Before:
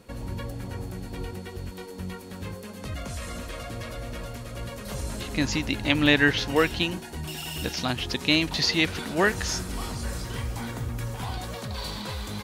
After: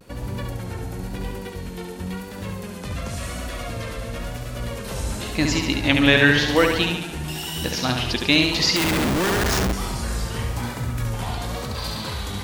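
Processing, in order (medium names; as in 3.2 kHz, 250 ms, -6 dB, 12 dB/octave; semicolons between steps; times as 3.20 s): on a send: flutter echo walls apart 12 m, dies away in 0.87 s; on the sum: vibrato 0.95 Hz 74 cents; 8.76–9.73 s: Schmitt trigger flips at -28.5 dBFS; trim +3.5 dB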